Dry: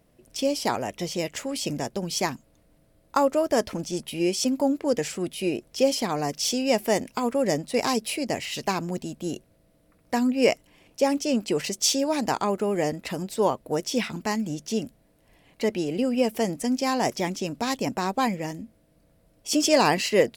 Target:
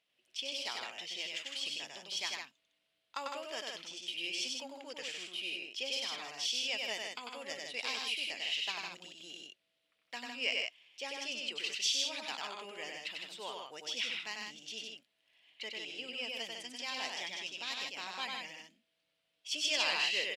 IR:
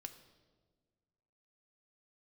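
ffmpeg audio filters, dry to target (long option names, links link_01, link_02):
-af "bandpass=frequency=3100:width_type=q:width=3:csg=0,aecho=1:1:96.21|157.4:0.708|0.562"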